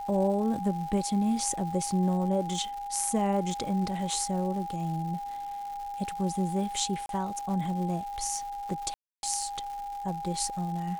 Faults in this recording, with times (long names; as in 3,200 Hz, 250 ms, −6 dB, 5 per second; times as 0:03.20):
surface crackle 310 per second −39 dBFS
whistle 810 Hz −34 dBFS
0:07.06–0:07.09: drop-out 32 ms
0:08.94–0:09.23: drop-out 291 ms